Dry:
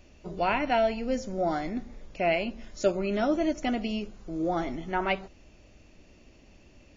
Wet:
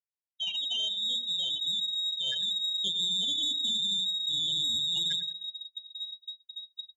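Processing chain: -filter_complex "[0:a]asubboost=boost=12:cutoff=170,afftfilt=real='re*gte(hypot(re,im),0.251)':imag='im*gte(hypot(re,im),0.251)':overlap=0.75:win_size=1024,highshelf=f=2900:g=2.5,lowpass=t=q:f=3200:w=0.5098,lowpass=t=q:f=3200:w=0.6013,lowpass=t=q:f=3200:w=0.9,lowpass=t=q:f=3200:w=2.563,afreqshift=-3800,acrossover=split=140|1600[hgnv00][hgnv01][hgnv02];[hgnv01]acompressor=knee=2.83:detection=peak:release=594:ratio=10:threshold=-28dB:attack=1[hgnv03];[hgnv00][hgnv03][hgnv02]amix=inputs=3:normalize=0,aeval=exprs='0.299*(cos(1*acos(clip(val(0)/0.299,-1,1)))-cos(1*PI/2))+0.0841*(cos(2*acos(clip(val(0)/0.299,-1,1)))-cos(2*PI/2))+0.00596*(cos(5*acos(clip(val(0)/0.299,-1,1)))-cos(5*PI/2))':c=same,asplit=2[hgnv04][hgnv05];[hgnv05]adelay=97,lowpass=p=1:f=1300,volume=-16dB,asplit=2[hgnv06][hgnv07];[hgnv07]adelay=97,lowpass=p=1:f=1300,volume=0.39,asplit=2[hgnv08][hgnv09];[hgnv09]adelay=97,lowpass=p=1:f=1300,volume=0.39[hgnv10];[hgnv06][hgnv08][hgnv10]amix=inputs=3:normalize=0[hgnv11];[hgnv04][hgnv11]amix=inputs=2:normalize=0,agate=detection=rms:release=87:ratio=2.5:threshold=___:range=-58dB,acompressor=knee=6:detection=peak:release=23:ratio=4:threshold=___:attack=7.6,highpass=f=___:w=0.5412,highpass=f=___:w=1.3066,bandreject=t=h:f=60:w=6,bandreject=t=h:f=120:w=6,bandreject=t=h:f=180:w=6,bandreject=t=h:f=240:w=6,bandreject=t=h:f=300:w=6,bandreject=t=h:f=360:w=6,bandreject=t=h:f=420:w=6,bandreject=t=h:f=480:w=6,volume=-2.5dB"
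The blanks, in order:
-39dB, -28dB, 66, 66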